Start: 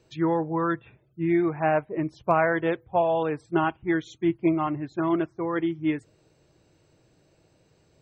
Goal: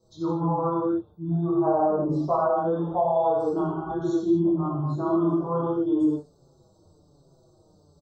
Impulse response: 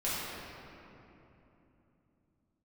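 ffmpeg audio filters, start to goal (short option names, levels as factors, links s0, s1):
-filter_complex "[1:a]atrim=start_sample=2205,afade=t=out:st=0.31:d=0.01,atrim=end_sample=14112[s0];[0:a][s0]afir=irnorm=-1:irlink=0,asplit=3[s1][s2][s3];[s1]afade=t=out:st=2.61:d=0.02[s4];[s2]acompressor=threshold=0.141:ratio=6,afade=t=in:st=2.61:d=0.02,afade=t=out:st=3.89:d=0.02[s5];[s3]afade=t=in:st=3.89:d=0.02[s6];[s4][s5][s6]amix=inputs=3:normalize=0,alimiter=limit=0.237:level=0:latency=1:release=78,asuperstop=centerf=2200:order=8:qfactor=0.84,asplit=2[s7][s8];[s8]adelay=5.8,afreqshift=-1.2[s9];[s7][s9]amix=inputs=2:normalize=1"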